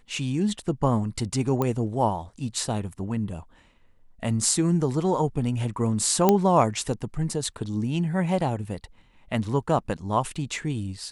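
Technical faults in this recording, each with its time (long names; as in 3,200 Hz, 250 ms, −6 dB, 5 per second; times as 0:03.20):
0:01.62: click −13 dBFS
0:06.29: click −5 dBFS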